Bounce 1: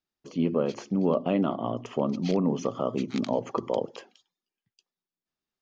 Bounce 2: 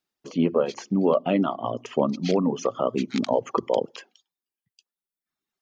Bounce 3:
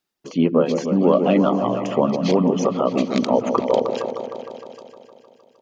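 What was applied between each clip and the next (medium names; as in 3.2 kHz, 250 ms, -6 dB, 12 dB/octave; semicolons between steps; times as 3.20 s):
reverb removal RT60 1.3 s; bass shelf 100 Hz -11.5 dB; trim +6 dB
delay with an opening low-pass 154 ms, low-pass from 750 Hz, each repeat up 1 oct, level -6 dB; trim +4 dB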